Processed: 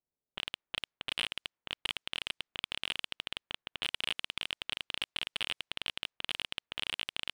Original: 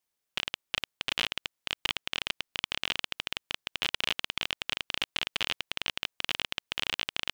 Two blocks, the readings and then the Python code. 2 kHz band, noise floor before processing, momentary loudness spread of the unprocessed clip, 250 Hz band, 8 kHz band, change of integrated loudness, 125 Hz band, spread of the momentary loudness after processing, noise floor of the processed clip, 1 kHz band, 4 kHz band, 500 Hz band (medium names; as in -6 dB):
-5.5 dB, -84 dBFS, 4 LU, -6.0 dB, -5.5 dB, -4.5 dB, -6.0 dB, 5 LU, under -85 dBFS, -6.5 dB, -4.0 dB, -6.0 dB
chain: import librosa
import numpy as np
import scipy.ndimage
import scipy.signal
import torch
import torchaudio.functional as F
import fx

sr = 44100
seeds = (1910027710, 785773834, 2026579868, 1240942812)

p1 = fx.env_lowpass(x, sr, base_hz=560.0, full_db=-30.5)
p2 = scipy.signal.sosfilt(scipy.signal.butter(2, 8700.0, 'lowpass', fs=sr, output='sos'), p1)
p3 = fx.fold_sine(p2, sr, drive_db=8, ceiling_db=-10.0)
p4 = p2 + (p3 * 10.0 ** (-11.5 / 20.0))
y = p4 * 10.0 ** (-7.0 / 20.0)